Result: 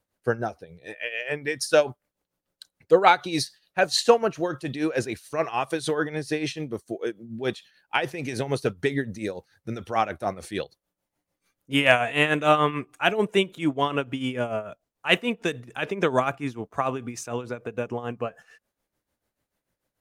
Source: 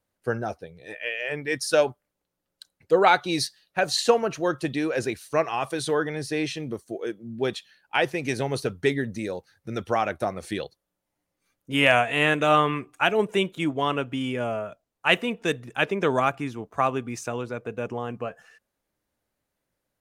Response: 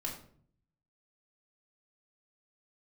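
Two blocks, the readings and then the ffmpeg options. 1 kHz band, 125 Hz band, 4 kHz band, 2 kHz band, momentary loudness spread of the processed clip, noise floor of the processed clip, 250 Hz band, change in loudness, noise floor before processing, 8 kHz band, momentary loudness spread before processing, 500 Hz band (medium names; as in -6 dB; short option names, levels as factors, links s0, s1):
0.0 dB, 0.0 dB, 0.0 dB, -0.5 dB, 14 LU, -85 dBFS, 0.0 dB, 0.0 dB, -82 dBFS, -0.5 dB, 14 LU, 0.0 dB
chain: -af "tremolo=f=6.8:d=0.71,volume=1.41"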